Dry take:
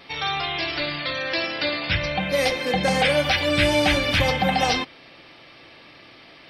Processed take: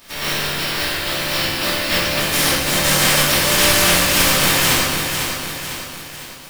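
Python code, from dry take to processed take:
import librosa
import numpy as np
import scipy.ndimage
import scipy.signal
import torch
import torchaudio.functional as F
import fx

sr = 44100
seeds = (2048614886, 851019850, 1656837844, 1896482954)

y = fx.spec_flatten(x, sr, power=0.17)
y = fx.room_shoebox(y, sr, seeds[0], volume_m3=320.0, walls='mixed', distance_m=2.7)
y = fx.echo_crushed(y, sr, ms=501, feedback_pct=55, bits=6, wet_db=-6.0)
y = y * 10.0 ** (-2.5 / 20.0)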